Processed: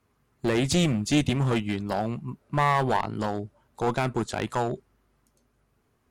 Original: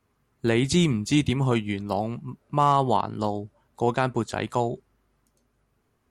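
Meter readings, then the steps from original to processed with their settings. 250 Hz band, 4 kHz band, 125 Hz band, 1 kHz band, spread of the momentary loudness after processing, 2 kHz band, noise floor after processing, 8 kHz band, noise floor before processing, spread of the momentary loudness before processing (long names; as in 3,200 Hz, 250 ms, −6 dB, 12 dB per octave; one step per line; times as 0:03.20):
−1.5 dB, −0.5 dB, −1.0 dB, −2.5 dB, 9 LU, +1.5 dB, −70 dBFS, +0.5 dB, −71 dBFS, 10 LU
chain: asymmetric clip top −22 dBFS
level +1 dB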